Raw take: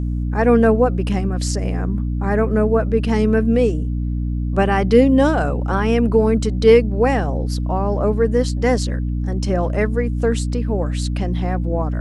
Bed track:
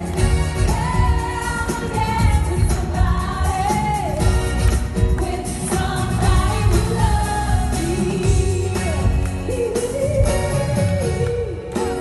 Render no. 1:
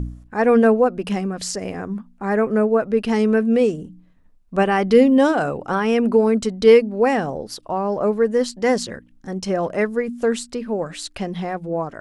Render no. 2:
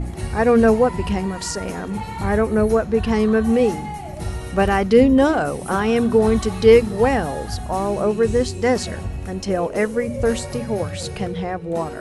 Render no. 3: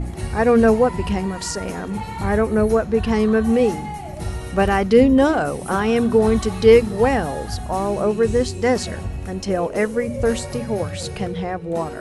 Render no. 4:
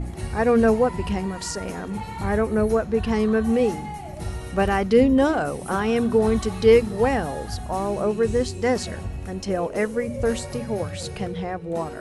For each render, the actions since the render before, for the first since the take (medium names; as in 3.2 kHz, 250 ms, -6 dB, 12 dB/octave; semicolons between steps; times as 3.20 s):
de-hum 60 Hz, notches 5
add bed track -10.5 dB
no audible change
trim -3.5 dB